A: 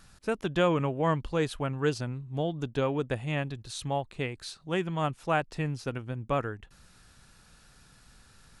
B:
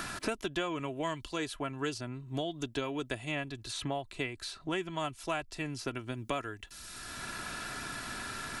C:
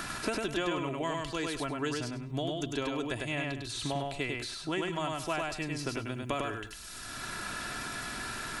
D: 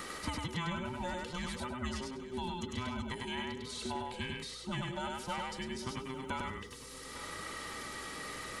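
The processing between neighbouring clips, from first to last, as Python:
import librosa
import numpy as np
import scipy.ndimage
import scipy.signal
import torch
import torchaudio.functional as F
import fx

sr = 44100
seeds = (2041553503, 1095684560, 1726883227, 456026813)

y1 = fx.high_shelf(x, sr, hz=2100.0, db=9.0)
y1 = y1 + 0.53 * np.pad(y1, (int(3.0 * sr / 1000.0), 0))[:len(y1)]
y1 = fx.band_squash(y1, sr, depth_pct=100)
y1 = y1 * librosa.db_to_amplitude(-7.5)
y2 = fx.echo_feedback(y1, sr, ms=101, feedback_pct=20, wet_db=-3.0)
y2 = fx.transient(y2, sr, attack_db=1, sustain_db=5)
y3 = fx.band_invert(y2, sr, width_hz=500)
y3 = fx.add_hum(y3, sr, base_hz=60, snr_db=21)
y3 = y3 + 10.0 ** (-14.5 / 20.0) * np.pad(y3, (int(852 * sr / 1000.0), 0))[:len(y3)]
y3 = y3 * librosa.db_to_amplitude(-5.0)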